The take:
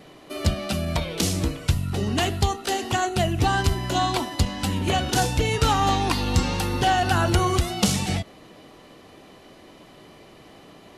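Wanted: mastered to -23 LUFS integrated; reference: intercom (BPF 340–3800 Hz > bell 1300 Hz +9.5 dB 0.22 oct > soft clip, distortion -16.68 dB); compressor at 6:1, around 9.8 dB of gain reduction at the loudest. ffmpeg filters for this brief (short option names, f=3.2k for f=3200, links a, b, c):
-af "acompressor=threshold=-26dB:ratio=6,highpass=340,lowpass=3.8k,equalizer=f=1.3k:t=o:w=0.22:g=9.5,asoftclip=threshold=-24.5dB,volume=11dB"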